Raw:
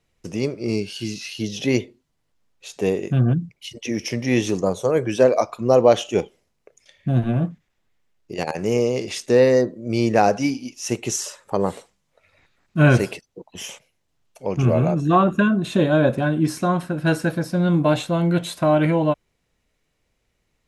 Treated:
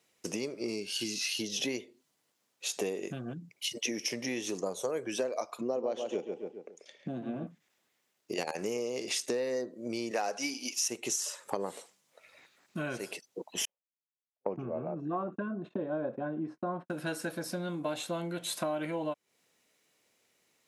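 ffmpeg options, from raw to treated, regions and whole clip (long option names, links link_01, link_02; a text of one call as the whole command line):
ffmpeg -i in.wav -filter_complex "[0:a]asettb=1/sr,asplit=3[link_01][link_02][link_03];[link_01]atrim=end=5.614[link_04];[link_02]atrim=start=5.61:end=7.47,asetpts=PTS-STARTPTS,afade=type=in:duration=0.004:curve=qsin,afade=type=out:start_time=1.856:duration=0.004:curve=qsin,highpass=190,lowpass=6600,tiltshelf=frequency=640:gain=5.5,asplit=2[link_05][link_06];[link_06]adelay=137,lowpass=frequency=2300:poles=1,volume=-8.5dB,asplit=2[link_07][link_08];[link_08]adelay=137,lowpass=frequency=2300:poles=1,volume=0.35,asplit=2[link_09][link_10];[link_10]adelay=137,lowpass=frequency=2300:poles=1,volume=0.35,asplit=2[link_11][link_12];[link_12]adelay=137,lowpass=frequency=2300:poles=1,volume=0.35[link_13];[link_05][link_07][link_09][link_11][link_13]amix=inputs=5:normalize=0,atrim=end_sample=82026[link_14];[link_03]atrim=start=7.466[link_15];[link_04][link_14]acrossfade=duration=0.004:curve1=hsin:curve2=qsin[link_16];[link_16][link_15]acrossfade=duration=0.004:curve1=qsin:curve2=hsin,asettb=1/sr,asplit=3[link_17][link_18][link_19];[link_17]atrim=end=10.114[link_20];[link_18]atrim=start=10.11:end=10.88,asetpts=PTS-STARTPTS,afade=type=in:duration=0.004:curve=qsin,afade=type=out:start_time=0.766:duration=0.004:curve=qsin,highpass=frequency=640:poles=1,acontrast=57[link_21];[link_19]atrim=start=10.876[link_22];[link_20][link_21]acrossfade=duration=0.004:curve1=hsin:curve2=qsin[link_23];[link_23][link_22]acrossfade=duration=0.004:curve1=qsin:curve2=hsin,asettb=1/sr,asplit=3[link_24][link_25][link_26];[link_24]atrim=end=13.654[link_27];[link_25]atrim=start=13.65:end=16.9,asetpts=PTS-STARTPTS,afade=type=in:duration=0.004:curve=qsin,afade=type=out:start_time=3.246:duration=0.004:curve=qsin,agate=range=-49dB:threshold=-31dB:ratio=16:release=100:detection=peak,lowpass=1100[link_28];[link_26]atrim=start=16.896[link_29];[link_27][link_28]acrossfade=duration=0.004:curve1=hsin:curve2=qsin[link_30];[link_30][link_29]acrossfade=duration=0.004:curve1=qsin:curve2=hsin,highshelf=frequency=4700:gain=8.5,acompressor=threshold=-29dB:ratio=12,highpass=260" out.wav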